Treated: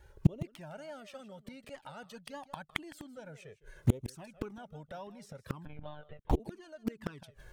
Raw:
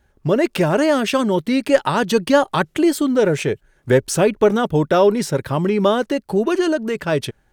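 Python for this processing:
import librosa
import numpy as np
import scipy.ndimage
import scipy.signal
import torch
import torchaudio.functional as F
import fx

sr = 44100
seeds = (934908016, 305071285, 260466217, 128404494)

p1 = fx.gate_flip(x, sr, shuts_db=-16.0, range_db=-36)
p2 = p1 + 10.0 ** (-16.5 / 20.0) * np.pad(p1, (int(159 * sr / 1000.0), 0))[:len(p1)]
p3 = fx.lpc_monotone(p2, sr, seeds[0], pitch_hz=150.0, order=10, at=(5.65, 6.4))
p4 = fx.quant_dither(p3, sr, seeds[1], bits=6, dither='none')
p5 = p3 + (p4 * librosa.db_to_amplitude(-12.0))
p6 = fx.rider(p5, sr, range_db=3, speed_s=0.5)
p7 = fx.env_flanger(p6, sr, rest_ms=2.3, full_db=-33.5)
y = p7 * librosa.db_to_amplitude(7.0)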